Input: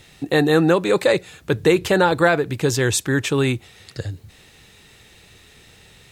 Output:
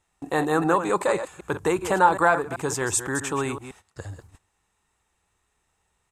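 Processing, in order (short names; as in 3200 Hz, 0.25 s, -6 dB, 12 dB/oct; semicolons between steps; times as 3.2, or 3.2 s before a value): reverse delay 0.128 s, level -9.5 dB; gate -38 dBFS, range -18 dB; ten-band EQ 125 Hz -11 dB, 250 Hz -5 dB, 500 Hz -7 dB, 1000 Hz +9 dB, 2000 Hz -5 dB, 4000 Hz -9 dB, 8000 Hz +11 dB; downsampling 32000 Hz; high shelf 3300 Hz -10 dB; gain -1 dB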